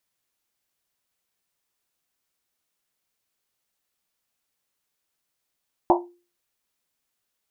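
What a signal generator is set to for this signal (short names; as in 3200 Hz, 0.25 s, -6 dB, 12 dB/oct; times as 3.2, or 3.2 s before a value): Risset drum, pitch 350 Hz, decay 0.36 s, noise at 810 Hz, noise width 330 Hz, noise 55%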